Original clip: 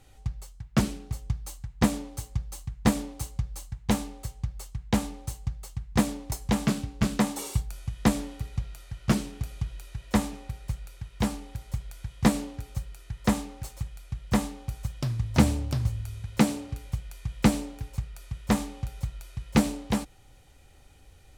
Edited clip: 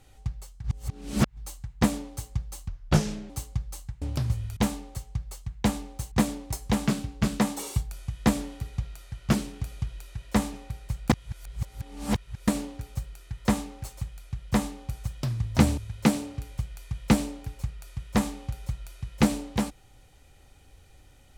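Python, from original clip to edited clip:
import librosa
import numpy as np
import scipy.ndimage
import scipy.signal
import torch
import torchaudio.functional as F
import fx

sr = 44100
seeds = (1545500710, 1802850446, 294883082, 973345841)

y = fx.edit(x, sr, fx.reverse_span(start_s=0.64, length_s=0.73),
    fx.speed_span(start_s=2.68, length_s=0.45, speed=0.73),
    fx.cut(start_s=5.4, length_s=0.51),
    fx.reverse_span(start_s=10.89, length_s=1.38),
    fx.move(start_s=15.57, length_s=0.55, to_s=3.85), tone=tone)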